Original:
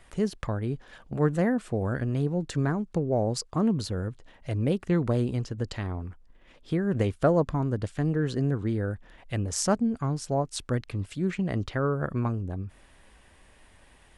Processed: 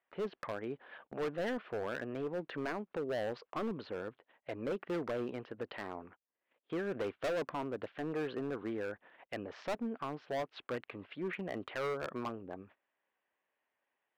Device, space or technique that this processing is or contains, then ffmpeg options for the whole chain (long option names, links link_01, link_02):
walkie-talkie: -af "highpass=430,lowpass=2900,lowpass=frequency=3400:width=0.5412,lowpass=frequency=3400:width=1.3066,asoftclip=type=hard:threshold=-31dB,agate=range=-23dB:threshold=-56dB:ratio=16:detection=peak,volume=-1dB"